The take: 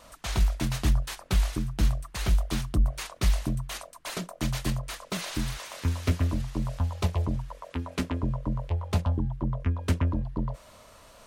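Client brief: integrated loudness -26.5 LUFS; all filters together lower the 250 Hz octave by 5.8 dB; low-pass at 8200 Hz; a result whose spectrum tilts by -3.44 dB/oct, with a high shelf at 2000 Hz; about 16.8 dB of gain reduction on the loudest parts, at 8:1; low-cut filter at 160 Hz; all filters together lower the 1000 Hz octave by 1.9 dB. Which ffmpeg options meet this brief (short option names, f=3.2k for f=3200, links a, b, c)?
-af "highpass=160,lowpass=8.2k,equalizer=f=250:t=o:g=-6,equalizer=f=1k:t=o:g=-3,highshelf=f=2k:g=4,acompressor=threshold=-46dB:ratio=8,volume=23dB"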